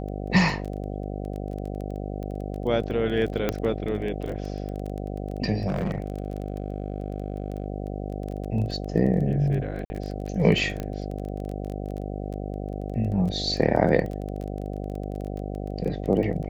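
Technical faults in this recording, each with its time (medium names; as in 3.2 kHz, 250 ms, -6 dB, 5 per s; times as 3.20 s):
buzz 50 Hz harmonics 15 -32 dBFS
crackle 16 per s -31 dBFS
3.49 s: pop -10 dBFS
5.67–7.66 s: clipped -22.5 dBFS
9.85–9.90 s: dropout 50 ms
10.80 s: pop -18 dBFS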